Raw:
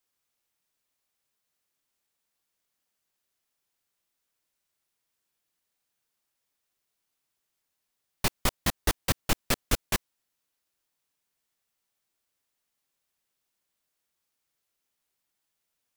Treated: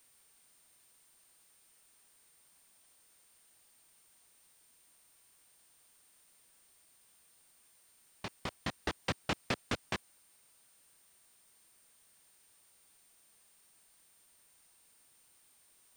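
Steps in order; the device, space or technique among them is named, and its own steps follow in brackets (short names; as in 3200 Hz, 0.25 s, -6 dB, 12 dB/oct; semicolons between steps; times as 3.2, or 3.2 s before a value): medium wave at night (BPF 100–4000 Hz; compressor, threshold -30 dBFS, peak gain reduction 7.5 dB; tremolo 0.32 Hz, depth 76%; whine 9000 Hz -67 dBFS; white noise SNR 20 dB)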